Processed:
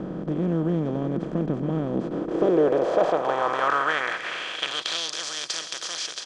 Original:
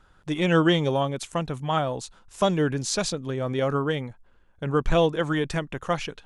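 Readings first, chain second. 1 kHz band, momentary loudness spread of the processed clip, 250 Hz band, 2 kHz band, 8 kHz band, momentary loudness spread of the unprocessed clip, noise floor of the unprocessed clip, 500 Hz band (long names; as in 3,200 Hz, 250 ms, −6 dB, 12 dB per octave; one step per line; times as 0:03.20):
+2.0 dB, 8 LU, 0.0 dB, +2.5 dB, +1.0 dB, 10 LU, −58 dBFS, +0.5 dB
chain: compressor on every frequency bin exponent 0.2
automatic gain control
single-tap delay 663 ms −13.5 dB
band-pass filter sweep 210 Hz → 5,100 Hz, 0:01.90–0:05.14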